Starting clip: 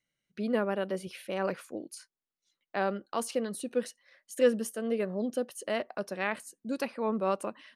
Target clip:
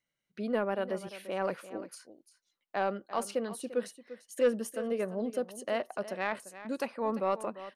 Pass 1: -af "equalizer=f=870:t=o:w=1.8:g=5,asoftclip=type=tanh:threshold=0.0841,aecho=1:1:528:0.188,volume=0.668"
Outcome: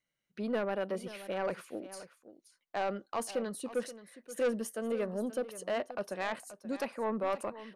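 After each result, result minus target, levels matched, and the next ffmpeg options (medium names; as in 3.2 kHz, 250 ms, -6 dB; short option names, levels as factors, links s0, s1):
echo 183 ms late; saturation: distortion +11 dB
-af "equalizer=f=870:t=o:w=1.8:g=5,asoftclip=type=tanh:threshold=0.0841,aecho=1:1:345:0.188,volume=0.668"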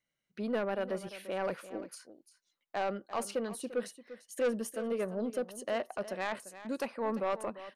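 saturation: distortion +11 dB
-af "equalizer=f=870:t=o:w=1.8:g=5,asoftclip=type=tanh:threshold=0.224,aecho=1:1:345:0.188,volume=0.668"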